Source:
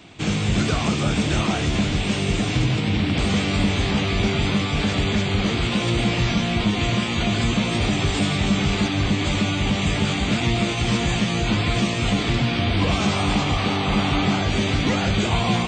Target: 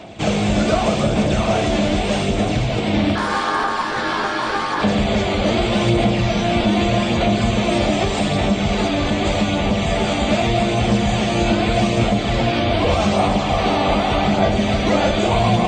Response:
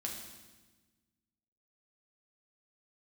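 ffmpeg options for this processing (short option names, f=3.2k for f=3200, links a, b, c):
-filter_complex "[0:a]aphaser=in_gain=1:out_gain=1:delay=3.5:decay=0.36:speed=0.83:type=sinusoidal,alimiter=limit=-13.5dB:level=0:latency=1:release=397,equalizer=f=620:w=1.5:g=12.5,asettb=1/sr,asplit=3[a][b][c];[a]atrim=end=3.154[d];[b]atrim=start=3.15:end=4.82,asetpts=PTS-STARTPTS,afade=t=in:d=0.004:c=qsin,afade=t=out:st=1.666:d=0.004:c=qsin,aeval=exprs='val(0)*sin(2*PI*1000*n/s)':c=same[e];[c]atrim=start=4.816[f];[d][e]acrossfade=d=0.004:c1=hsin:c2=qsin[g];[g][f]acrossfade=d=0.004:c1=qsin:c2=hsin,asplit=2[h][i];[1:a]atrim=start_sample=2205,afade=t=out:st=0.34:d=0.01,atrim=end_sample=15435[j];[i][j]afir=irnorm=-1:irlink=0,volume=0.5dB[k];[h][k]amix=inputs=2:normalize=0,volume=-3dB"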